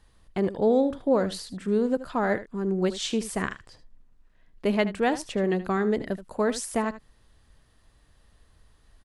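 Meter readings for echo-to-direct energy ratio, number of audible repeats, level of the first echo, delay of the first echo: −14.5 dB, 1, −14.5 dB, 77 ms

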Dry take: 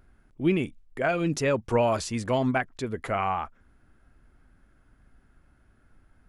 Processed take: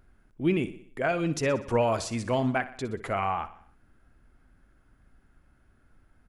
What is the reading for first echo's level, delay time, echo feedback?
−15.0 dB, 61 ms, 54%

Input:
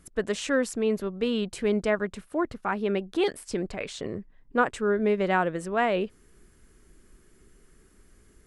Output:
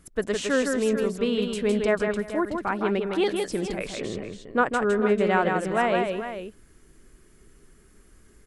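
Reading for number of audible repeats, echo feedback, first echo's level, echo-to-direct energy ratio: 3, repeats not evenly spaced, −4.5 dB, −3.5 dB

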